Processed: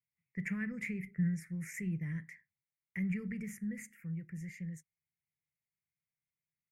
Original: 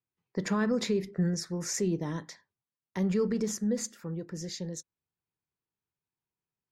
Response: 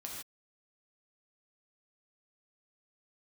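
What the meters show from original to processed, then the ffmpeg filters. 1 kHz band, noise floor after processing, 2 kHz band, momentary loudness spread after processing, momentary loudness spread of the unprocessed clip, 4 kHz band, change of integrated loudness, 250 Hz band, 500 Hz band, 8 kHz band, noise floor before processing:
below −20 dB, below −85 dBFS, −1.0 dB, 11 LU, 11 LU, below −20 dB, −7.5 dB, −7.0 dB, −22.0 dB, −16.5 dB, below −85 dBFS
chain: -af "firequalizer=gain_entry='entry(110,0);entry(150,6);entry(290,-14);entry(910,-23);entry(2100,13);entry(3700,-27);entry(9400,1)':delay=0.05:min_phase=1,volume=-6dB"

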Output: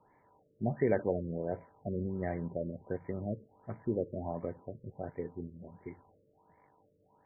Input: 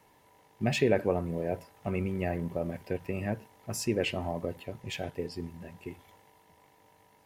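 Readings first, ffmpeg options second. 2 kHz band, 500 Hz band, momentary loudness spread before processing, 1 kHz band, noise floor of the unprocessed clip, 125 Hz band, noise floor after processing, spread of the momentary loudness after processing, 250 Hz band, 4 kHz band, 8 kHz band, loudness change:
−10.5 dB, −3.5 dB, 15 LU, −5.0 dB, −63 dBFS, −4.0 dB, −70 dBFS, 16 LU, −3.5 dB, below −40 dB, below −35 dB, −4.5 dB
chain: -af "equalizer=frequency=66:width_type=o:width=0.49:gain=-6,afftfilt=real='re*lt(b*sr/1024,590*pow(2400/590,0.5+0.5*sin(2*PI*1.4*pts/sr)))':imag='im*lt(b*sr/1024,590*pow(2400/590,0.5+0.5*sin(2*PI*1.4*pts/sr)))':win_size=1024:overlap=0.75,volume=-3.5dB"

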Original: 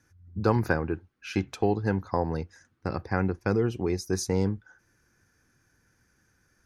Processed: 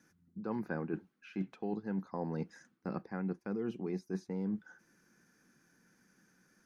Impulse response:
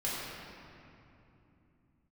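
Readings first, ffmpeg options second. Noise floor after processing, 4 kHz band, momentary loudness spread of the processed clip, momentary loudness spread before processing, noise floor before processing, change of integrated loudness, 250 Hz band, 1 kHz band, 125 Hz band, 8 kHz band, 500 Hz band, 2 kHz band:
−73 dBFS, below −15 dB, 6 LU, 10 LU, −69 dBFS, −11.0 dB, −7.5 dB, −13.5 dB, −13.5 dB, below −20 dB, −12.5 dB, −14.0 dB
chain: -filter_complex "[0:a]acrossover=split=3000[link_01][link_02];[link_02]acompressor=threshold=-58dB:ratio=4:attack=1:release=60[link_03];[link_01][link_03]amix=inputs=2:normalize=0,lowshelf=frequency=130:width_type=q:width=3:gain=-12.5,areverse,acompressor=threshold=-32dB:ratio=10,areverse,volume=-1.5dB"

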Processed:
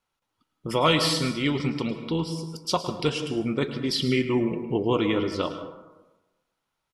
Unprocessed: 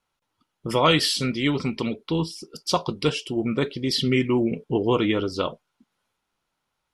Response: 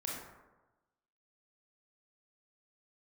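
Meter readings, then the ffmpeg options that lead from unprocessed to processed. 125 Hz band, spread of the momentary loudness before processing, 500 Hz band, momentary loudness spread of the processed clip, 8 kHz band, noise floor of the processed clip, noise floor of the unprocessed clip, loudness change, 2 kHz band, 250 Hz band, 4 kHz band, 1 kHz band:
−1.5 dB, 9 LU, −1.5 dB, 10 LU, −2.0 dB, −81 dBFS, −79 dBFS, −2.0 dB, −2.0 dB, −1.5 dB, −2.0 dB, −2.0 dB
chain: -filter_complex "[0:a]asplit=2[link_01][link_02];[link_02]aecho=1:1:6.2:0.37[link_03];[1:a]atrim=start_sample=2205,adelay=107[link_04];[link_03][link_04]afir=irnorm=-1:irlink=0,volume=-10dB[link_05];[link_01][link_05]amix=inputs=2:normalize=0,volume=-2.5dB"

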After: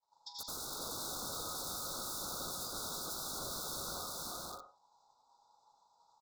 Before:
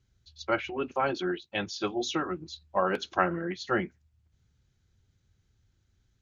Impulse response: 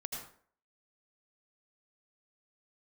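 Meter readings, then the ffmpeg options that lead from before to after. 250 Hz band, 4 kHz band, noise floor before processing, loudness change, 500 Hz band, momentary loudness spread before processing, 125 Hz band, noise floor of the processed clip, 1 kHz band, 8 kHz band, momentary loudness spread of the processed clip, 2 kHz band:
−18.0 dB, −2.5 dB, −72 dBFS, −9.0 dB, −17.5 dB, 6 LU, −12.5 dB, −73 dBFS, −13.0 dB, can't be measured, 5 LU, −19.5 dB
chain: -filter_complex "[0:a]equalizer=frequency=120:width=1.6:gain=-12,aresample=16000,aeval=exprs='0.398*sin(PI/2*7.08*val(0)/0.398)':channel_layout=same,aresample=44100,aeval=exprs='val(0)*sin(2*PI*900*n/s)':channel_layout=same,agate=range=-33dB:threshold=-44dB:ratio=3:detection=peak[link_01];[1:a]atrim=start_sample=2205,afade=type=out:start_time=0.37:duration=0.01,atrim=end_sample=16758[link_02];[link_01][link_02]afir=irnorm=-1:irlink=0,alimiter=limit=-16.5dB:level=0:latency=1:release=20,equalizer=frequency=3700:width=1.1:gain=6,asplit=2[link_03][link_04];[link_04]adelay=41,volume=-11dB[link_05];[link_03][link_05]amix=inputs=2:normalize=0,aeval=exprs='(mod(10*val(0)+1,2)-1)/10':channel_layout=same,asuperstop=centerf=2300:order=20:qfactor=1.1,aecho=1:1:81|323|505|565:0.126|0.668|0.631|0.251,acompressor=threshold=-42dB:ratio=2,volume=-6.5dB"

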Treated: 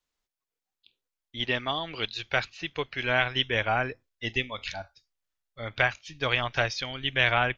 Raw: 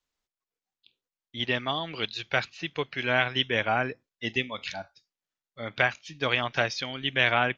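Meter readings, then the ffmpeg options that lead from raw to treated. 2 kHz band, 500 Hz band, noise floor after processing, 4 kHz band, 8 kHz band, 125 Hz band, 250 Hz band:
0.0 dB, −1.0 dB, below −85 dBFS, 0.0 dB, can't be measured, +1.5 dB, −2.5 dB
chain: -af "asubboost=boost=8.5:cutoff=65"

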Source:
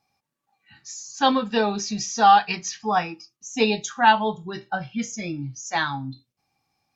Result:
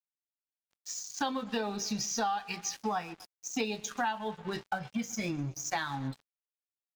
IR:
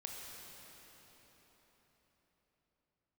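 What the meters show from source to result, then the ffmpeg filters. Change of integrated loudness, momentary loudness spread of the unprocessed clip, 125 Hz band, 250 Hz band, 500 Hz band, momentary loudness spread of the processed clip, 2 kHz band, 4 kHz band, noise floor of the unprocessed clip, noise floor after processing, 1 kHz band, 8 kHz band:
−12.5 dB, 17 LU, −6.0 dB, −8.5 dB, −11.5 dB, 8 LU, −11.5 dB, −10.5 dB, −82 dBFS, below −85 dBFS, −15.0 dB, can't be measured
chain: -af "aecho=1:1:126|252|378:0.0794|0.0397|0.0199,aeval=exprs='sgn(val(0))*max(abs(val(0))-0.0075,0)':channel_layout=same,acompressor=threshold=-32dB:ratio=8,volume=2dB"

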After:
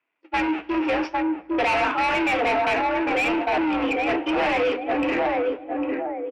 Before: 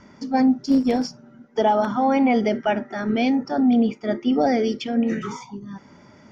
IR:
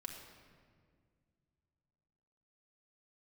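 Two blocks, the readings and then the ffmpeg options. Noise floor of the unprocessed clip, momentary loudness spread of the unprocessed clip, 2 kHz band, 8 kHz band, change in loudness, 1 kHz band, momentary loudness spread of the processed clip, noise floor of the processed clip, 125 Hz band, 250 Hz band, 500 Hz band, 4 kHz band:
−50 dBFS, 12 LU, +8.5 dB, can't be measured, −2.0 dB, +1.5 dB, 6 LU, −49 dBFS, −8.0 dB, −5.5 dB, −0.5 dB, +2.5 dB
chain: -filter_complex "[0:a]aeval=exprs='val(0)+0.5*0.0251*sgn(val(0))':channel_layout=same,highpass=frequency=60:width=0.5412,highpass=frequency=60:width=1.3066,agate=range=-52dB:threshold=-23dB:ratio=16:detection=peak,equalizer=frequency=150:width_type=o:width=1.1:gain=-13.5,asplit=2[link_01][link_02];[link_02]adelay=803,lowpass=frequency=800:poles=1,volume=-4.5dB,asplit=2[link_03][link_04];[link_04]adelay=803,lowpass=frequency=800:poles=1,volume=0.34,asplit=2[link_05][link_06];[link_06]adelay=803,lowpass=frequency=800:poles=1,volume=0.34,asplit=2[link_07][link_08];[link_08]adelay=803,lowpass=frequency=800:poles=1,volume=0.34[link_09];[link_01][link_03][link_05][link_07][link_09]amix=inputs=5:normalize=0,afreqshift=58,asoftclip=type=tanh:threshold=-25dB,lowpass=frequency=2600:width_type=q:width=6,flanger=delay=8:depth=7.8:regen=-77:speed=0.86:shape=triangular,asplit=2[link_10][link_11];[link_11]highpass=frequency=720:poles=1,volume=23dB,asoftclip=type=tanh:threshold=-10dB[link_12];[link_10][link_12]amix=inputs=2:normalize=0,lowpass=frequency=1200:poles=1,volume=-6dB,asplit=2[link_13][link_14];[1:a]atrim=start_sample=2205,asetrate=39249,aresample=44100[link_15];[link_14][link_15]afir=irnorm=-1:irlink=0,volume=-14dB[link_16];[link_13][link_16]amix=inputs=2:normalize=0"

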